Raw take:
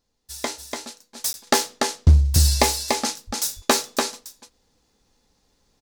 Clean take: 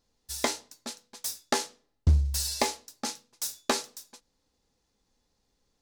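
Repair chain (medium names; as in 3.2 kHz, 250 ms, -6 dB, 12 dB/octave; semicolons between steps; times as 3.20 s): de-plosive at 3.26 s; interpolate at 1.33 s, 11 ms; inverse comb 290 ms -4 dB; trim 0 dB, from 1.18 s -8 dB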